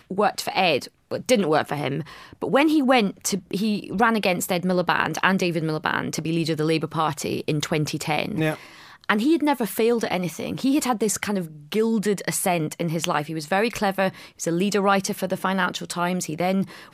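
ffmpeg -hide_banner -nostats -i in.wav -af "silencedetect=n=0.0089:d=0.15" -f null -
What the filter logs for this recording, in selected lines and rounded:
silence_start: 0.89
silence_end: 1.11 | silence_duration: 0.23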